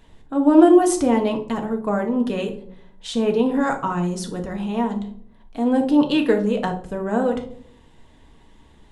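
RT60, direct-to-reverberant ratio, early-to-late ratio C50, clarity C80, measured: 0.65 s, 3.0 dB, 10.0 dB, 15.0 dB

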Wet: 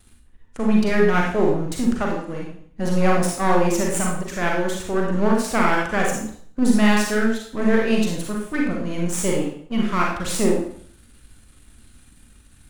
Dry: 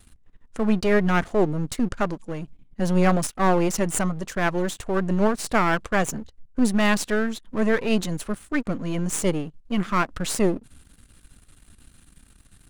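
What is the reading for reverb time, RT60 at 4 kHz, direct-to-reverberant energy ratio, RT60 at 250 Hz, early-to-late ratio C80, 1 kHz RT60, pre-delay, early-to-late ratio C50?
0.55 s, 0.50 s, -2.0 dB, 0.55 s, 6.5 dB, 0.60 s, 31 ms, 2.0 dB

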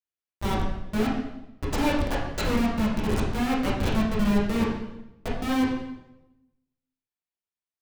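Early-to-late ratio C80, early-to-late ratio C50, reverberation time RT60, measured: 5.0 dB, 2.0 dB, 0.95 s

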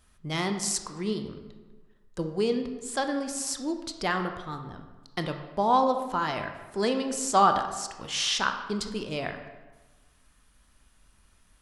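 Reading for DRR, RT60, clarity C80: 6.0 dB, 1.3 s, 10.0 dB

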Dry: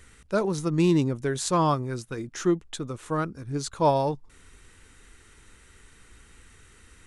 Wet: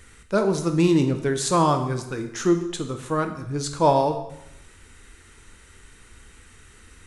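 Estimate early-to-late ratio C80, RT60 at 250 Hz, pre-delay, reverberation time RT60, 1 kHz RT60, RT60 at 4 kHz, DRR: 11.5 dB, 0.85 s, 4 ms, 0.80 s, 0.80 s, 0.80 s, 6.0 dB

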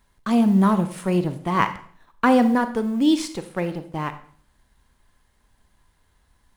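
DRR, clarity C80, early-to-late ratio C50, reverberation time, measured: 10.0 dB, 16.0 dB, 12.5 dB, 0.50 s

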